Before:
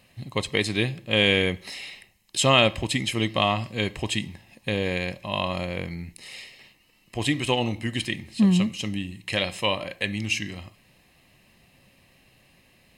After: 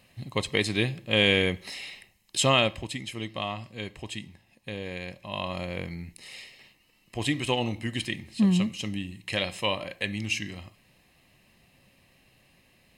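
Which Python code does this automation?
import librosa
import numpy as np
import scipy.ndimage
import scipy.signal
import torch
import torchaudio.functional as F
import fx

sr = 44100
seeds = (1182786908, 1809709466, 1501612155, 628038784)

y = fx.gain(x, sr, db=fx.line((2.4, -1.5), (2.99, -10.0), (4.86, -10.0), (5.76, -3.0)))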